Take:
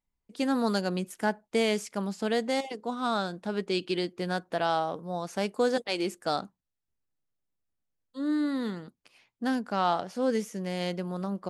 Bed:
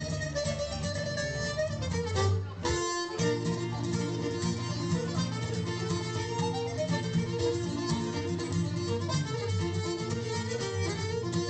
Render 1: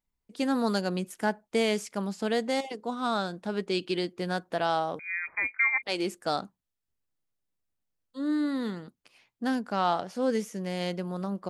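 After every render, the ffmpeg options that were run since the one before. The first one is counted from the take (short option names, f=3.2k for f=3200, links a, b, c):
-filter_complex "[0:a]asettb=1/sr,asplit=3[a][b][c];[a]atrim=end=4.994[d];[b]atrim=start=4.99:end=5.83,asetpts=PTS-STARTPTS,afade=t=in:d=0.004:c=qsin,afade=t=out:st=0.836:d=0.004:c=qsin,lowpass=f=2.2k:t=q:w=0.5098,lowpass=f=2.2k:t=q:w=0.6013,lowpass=f=2.2k:t=q:w=0.9,lowpass=f=2.2k:t=q:w=2.563,afreqshift=-2600[e];[c]atrim=start=5.826[f];[d][e]acrossfade=d=0.004:c1=hsin:c2=qsin[g];[g][f]acrossfade=d=0.004:c1=qsin:c2=hsin"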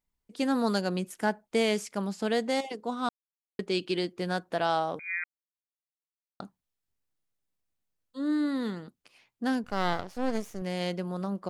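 -filter_complex "[0:a]asettb=1/sr,asplit=3[a][b][c];[a]atrim=end=9.644[d];[b]atrim=start=9.64:end=10.62,asetpts=PTS-STARTPTS,afade=t=in:d=0.004:c=qsin,afade=t=out:st=0.976:d=0.004:c=qsin,aeval=exprs='max(val(0),0)':c=same[e];[c]atrim=start=10.616[f];[d][e]acrossfade=d=0.004:c1=hsin:c2=qsin[g];[g][f]acrossfade=d=0.004:c1=qsin:c2=hsin,asplit=5[h][i][j][k][l];[h]atrim=end=3.09,asetpts=PTS-STARTPTS,afade=t=out:st=3.086:d=0.004:c=hsin[m];[i]atrim=start=3.09:end=3.59,asetpts=PTS-STARTPTS,volume=0[n];[j]atrim=start=3.59:end=5.24,asetpts=PTS-STARTPTS,afade=t=in:d=0.004:c=hsin,afade=t=out:st=1.646:d=0.004:c=hsin[o];[k]atrim=start=5.24:end=6.4,asetpts=PTS-STARTPTS,volume=0[p];[l]atrim=start=6.4,asetpts=PTS-STARTPTS,afade=t=in:d=0.004:c=hsin[q];[m][n][o][p][q]concat=n=5:v=0:a=1"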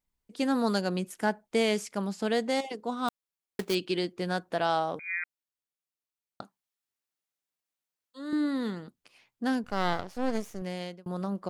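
-filter_complex "[0:a]asettb=1/sr,asplit=3[a][b][c];[a]atrim=end=3.084[d];[b]atrim=start=3.08:end=3.75,asetpts=PTS-STARTPTS,afade=t=in:d=0.004:c=qsin,afade=t=out:st=0.666:d=0.004:c=qsin,acrusher=bits=2:mode=log:mix=0:aa=0.000001[e];[c]atrim=start=3.746[f];[d][e]acrossfade=d=0.004:c1=hsin:c2=qsin[g];[g][f]acrossfade=d=0.004:c1=qsin:c2=hsin,asettb=1/sr,asplit=3[h][i][j];[h]atrim=end=6.424[k];[i]atrim=start=6.42:end=8.33,asetpts=PTS-STARTPTS,afade=t=in:d=0.004:c=qsin,afade=t=out:st=1.906:d=0.004:c=qsin,highpass=f=720:p=1[l];[j]atrim=start=8.326[m];[k][l]acrossfade=d=0.004:c1=hsin:c2=qsin[n];[n][m]acrossfade=d=0.004:c1=qsin:c2=hsin,asplit=2[o][p];[o]atrim=end=11.06,asetpts=PTS-STARTPTS,afade=t=out:st=10.39:d=0.67:c=qsin[q];[p]atrim=start=11.06,asetpts=PTS-STARTPTS,afade=t=in:d=0.004:c=hsin[r];[q][r]concat=n=2:v=0:a=1"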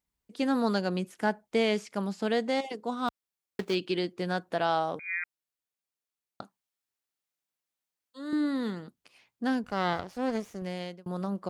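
-filter_complex "[0:a]highpass=41,acrossover=split=5200[a][b];[b]acompressor=threshold=-54dB:ratio=4:attack=1:release=60[c];[a][c]amix=inputs=2:normalize=0"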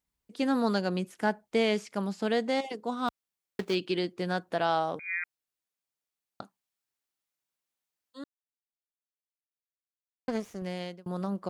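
-filter_complex "[0:a]asplit=3[a][b][c];[a]atrim=end=8.24,asetpts=PTS-STARTPTS,afade=t=out:st=8.236:d=0.004:c=hsin[d];[b]atrim=start=8.24:end=10.28,asetpts=PTS-STARTPTS,volume=0[e];[c]atrim=start=10.28,asetpts=PTS-STARTPTS,afade=t=in:d=0.004:c=hsin[f];[d][e][f]concat=n=3:v=0:a=1"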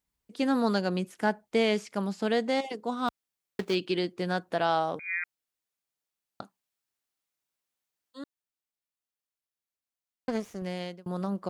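-af "volume=1dB"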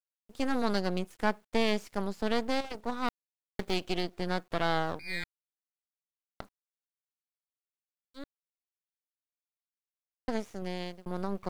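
-af "aeval=exprs='max(val(0),0)':c=same,acrusher=bits=10:mix=0:aa=0.000001"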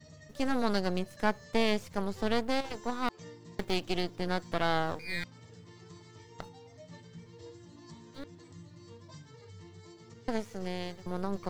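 -filter_complex "[1:a]volume=-20dB[a];[0:a][a]amix=inputs=2:normalize=0"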